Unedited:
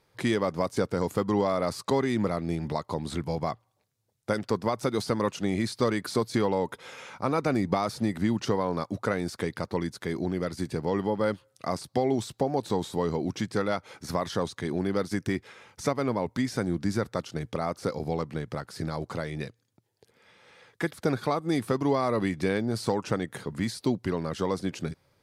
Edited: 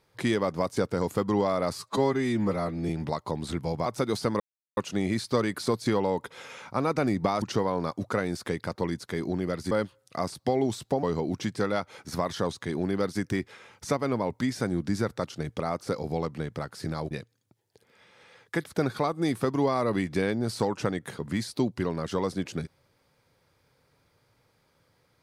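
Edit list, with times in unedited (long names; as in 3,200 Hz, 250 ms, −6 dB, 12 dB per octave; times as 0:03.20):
0:01.78–0:02.52: time-stretch 1.5×
0:03.49–0:04.71: remove
0:05.25: splice in silence 0.37 s
0:07.90–0:08.35: remove
0:10.64–0:11.20: remove
0:12.52–0:12.99: remove
0:19.07–0:19.38: remove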